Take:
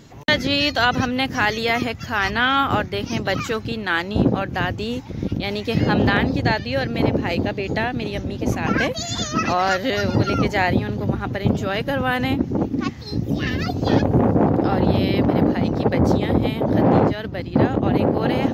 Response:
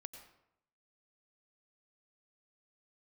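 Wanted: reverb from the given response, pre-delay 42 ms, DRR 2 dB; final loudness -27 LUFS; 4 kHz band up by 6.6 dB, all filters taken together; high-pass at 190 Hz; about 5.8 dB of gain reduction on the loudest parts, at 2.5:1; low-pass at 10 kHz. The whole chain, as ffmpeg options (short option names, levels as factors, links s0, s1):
-filter_complex "[0:a]highpass=190,lowpass=10000,equalizer=f=4000:t=o:g=8.5,acompressor=threshold=0.0891:ratio=2.5,asplit=2[s0][s1];[1:a]atrim=start_sample=2205,adelay=42[s2];[s1][s2]afir=irnorm=-1:irlink=0,volume=1.41[s3];[s0][s3]amix=inputs=2:normalize=0,volume=0.562"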